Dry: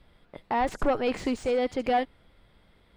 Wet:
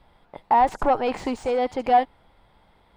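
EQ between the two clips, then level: peaking EQ 860 Hz +12 dB 0.71 oct; 0.0 dB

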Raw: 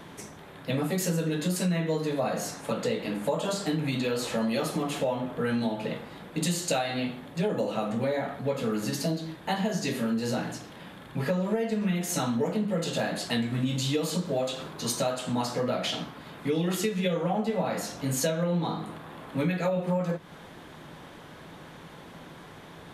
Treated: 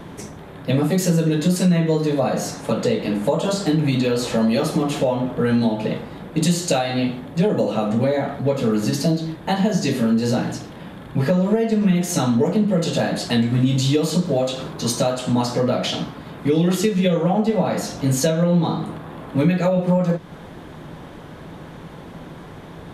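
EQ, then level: tilt shelf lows +4 dB; bass shelf 76 Hz +5.5 dB; dynamic bell 5.2 kHz, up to +5 dB, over -52 dBFS, Q 0.75; +6.0 dB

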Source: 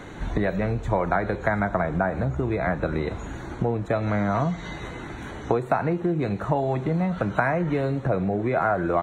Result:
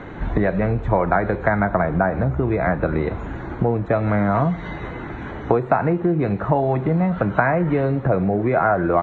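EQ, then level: low-pass 2.3 kHz 12 dB/octave; +5.0 dB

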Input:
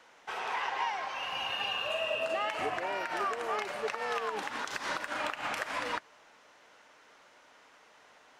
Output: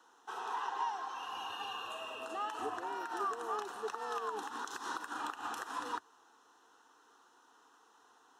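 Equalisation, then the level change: high-pass 97 Hz 24 dB/octave; static phaser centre 590 Hz, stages 6; band-stop 4.7 kHz, Q 6.5; -2.0 dB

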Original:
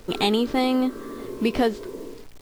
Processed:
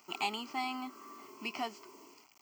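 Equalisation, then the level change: high-pass 500 Hz 12 dB/octave; treble shelf 9.5 kHz +3.5 dB; static phaser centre 2.5 kHz, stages 8; -6.0 dB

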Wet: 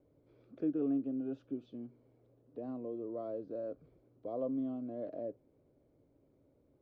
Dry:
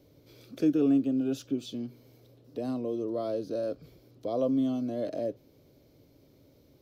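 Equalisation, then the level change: low-pass 1.3 kHz 12 dB/octave; peaking EQ 120 Hz -3.5 dB 1.7 oct; -8.0 dB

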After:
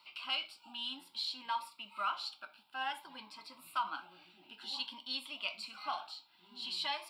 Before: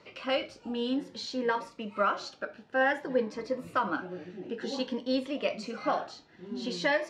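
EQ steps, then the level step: differentiator; peaking EQ 900 Hz +7 dB 0.28 oct; static phaser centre 1.8 kHz, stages 6; +9.0 dB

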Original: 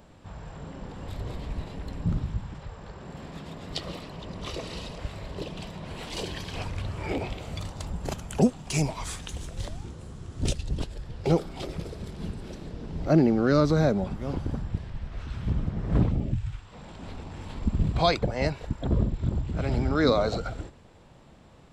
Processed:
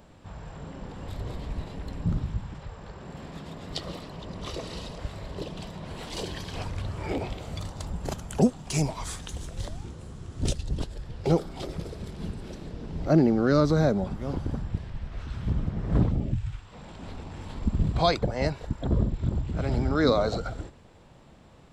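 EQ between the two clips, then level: dynamic bell 2.5 kHz, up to -4 dB, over -54 dBFS, Q 2.4; 0.0 dB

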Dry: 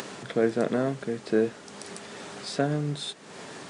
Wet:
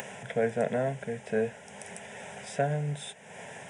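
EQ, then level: static phaser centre 1.2 kHz, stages 6; +1.5 dB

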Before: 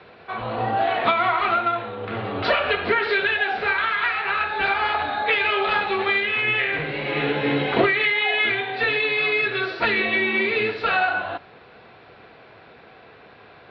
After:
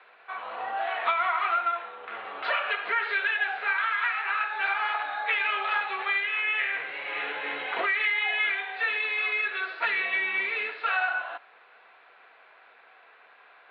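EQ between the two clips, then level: high-pass 1.1 kHz 12 dB/octave; distance through air 390 m; 0.0 dB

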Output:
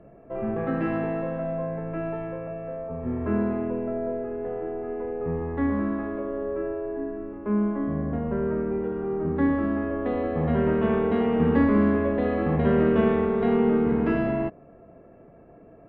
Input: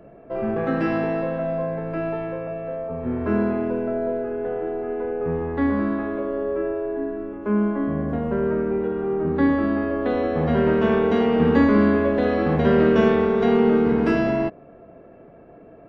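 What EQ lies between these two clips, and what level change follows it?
distance through air 460 m; peaking EQ 440 Hz -3.5 dB 2.8 oct; band-stop 1.5 kHz, Q 13; 0.0 dB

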